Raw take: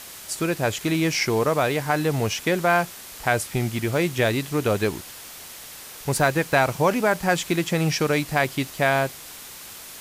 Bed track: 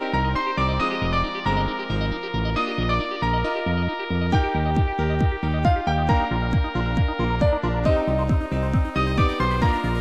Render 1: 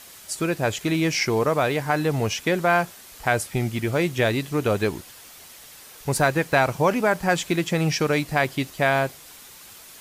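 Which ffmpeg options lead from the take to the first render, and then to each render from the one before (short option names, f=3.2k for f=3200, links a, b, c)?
-af "afftdn=nr=6:nf=-41"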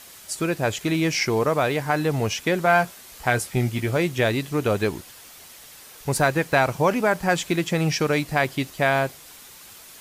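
-filter_complex "[0:a]asettb=1/sr,asplit=3[a][b][c];[a]atrim=end=2.644[d];[b]atrim=start=2.64:end=3.97,asetpts=PTS-STARTPTS,afade=t=in:d=0.004:c=qsin,afade=t=out:st=1.326:d=0.004:c=qsin,asplit=2[e][f];[f]adelay=16,volume=-8dB[g];[e][g]amix=inputs=2:normalize=0,atrim=end_sample=58653[h];[c]atrim=start=3.966[i];[d][h]acrossfade=d=0.004:c1=hsin:c2=qsin[j];[j][i]acrossfade=d=0.004:c1=qsin:c2=hsin"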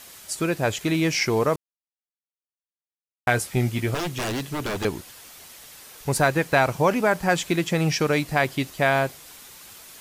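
-filter_complex "[0:a]asettb=1/sr,asplit=3[a][b][c];[a]atrim=end=3.944[d];[b]atrim=start=3.94:end=4.85,asetpts=PTS-STARTPTS,afade=t=in:d=0.004:c=qsin,afade=t=out:st=0.906:d=0.004:c=qsin,aeval=exprs='0.0794*(abs(mod(val(0)/0.0794+3,4)-2)-1)':c=same[e];[c]atrim=start=4.846[f];[d][e]acrossfade=d=0.004:c1=hsin:c2=qsin[g];[g][f]acrossfade=d=0.004:c1=qsin:c2=hsin,asplit=3[h][i][j];[h]atrim=end=1.56,asetpts=PTS-STARTPTS,afade=t=out:st=1.556:d=0.004:c=hsin[k];[i]atrim=start=1.56:end=3.27,asetpts=PTS-STARTPTS,volume=0[l];[j]atrim=start=3.27,asetpts=PTS-STARTPTS,afade=t=in:d=0.004:c=hsin[m];[k][l][m]concat=n=3:v=0:a=1"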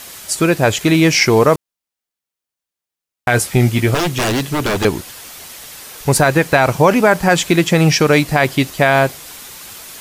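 -af "alimiter=level_in=10.5dB:limit=-1dB:release=50:level=0:latency=1"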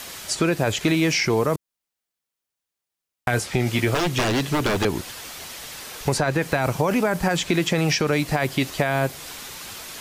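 -filter_complex "[0:a]alimiter=limit=-5dB:level=0:latency=1:release=20,acrossover=split=310|6800[a][b][c];[a]acompressor=threshold=-24dB:ratio=4[d];[b]acompressor=threshold=-21dB:ratio=4[e];[c]acompressor=threshold=-42dB:ratio=4[f];[d][e][f]amix=inputs=3:normalize=0"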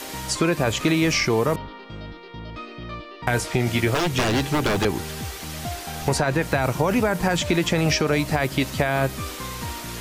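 -filter_complex "[1:a]volume=-12.5dB[a];[0:a][a]amix=inputs=2:normalize=0"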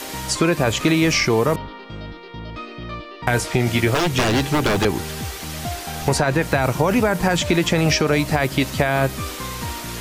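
-af "volume=3dB"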